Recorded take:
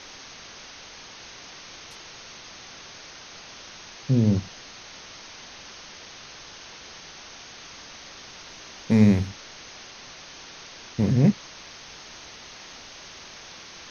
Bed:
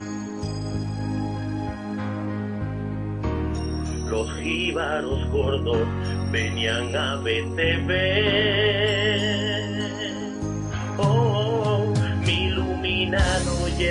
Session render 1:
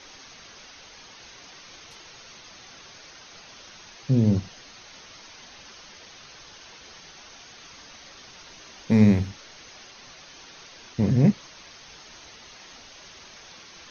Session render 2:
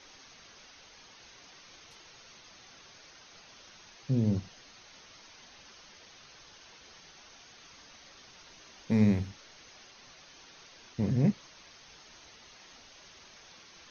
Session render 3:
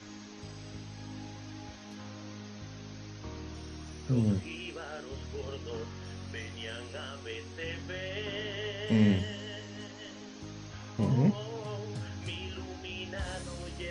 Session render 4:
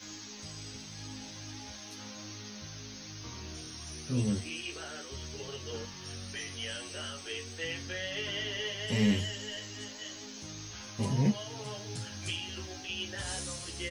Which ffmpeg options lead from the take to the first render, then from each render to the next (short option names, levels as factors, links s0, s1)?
-af "afftdn=nr=6:nf=-44"
-af "volume=0.422"
-filter_complex "[1:a]volume=0.141[s0];[0:a][s0]amix=inputs=2:normalize=0"
-filter_complex "[0:a]crystalizer=i=4.5:c=0,asplit=2[s0][s1];[s1]adelay=11.1,afreqshift=2.3[s2];[s0][s2]amix=inputs=2:normalize=1"